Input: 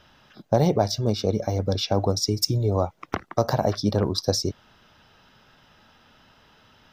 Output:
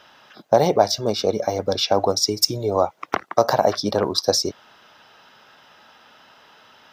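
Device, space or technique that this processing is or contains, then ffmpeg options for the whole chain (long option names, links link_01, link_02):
filter by subtraction: -filter_complex "[0:a]asplit=2[link_01][link_02];[link_02]lowpass=750,volume=-1[link_03];[link_01][link_03]amix=inputs=2:normalize=0,volume=5.5dB"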